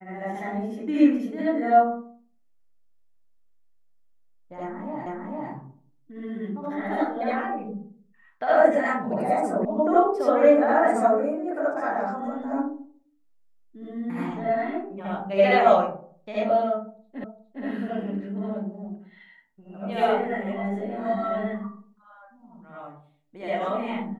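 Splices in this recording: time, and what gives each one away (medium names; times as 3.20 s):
5.06 s: repeat of the last 0.45 s
9.65 s: sound stops dead
17.24 s: repeat of the last 0.41 s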